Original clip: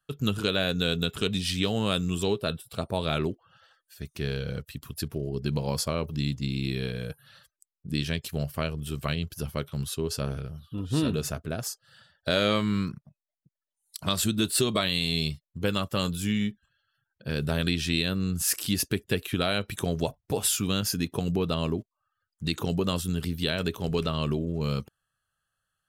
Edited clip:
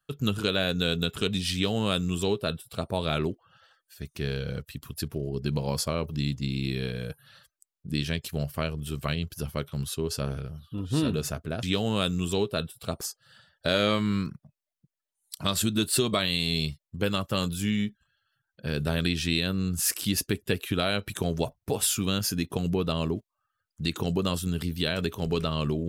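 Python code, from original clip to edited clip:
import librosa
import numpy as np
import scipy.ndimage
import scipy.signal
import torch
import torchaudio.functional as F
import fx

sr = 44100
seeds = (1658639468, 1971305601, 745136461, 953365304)

y = fx.edit(x, sr, fx.duplicate(start_s=1.53, length_s=1.38, to_s=11.63), tone=tone)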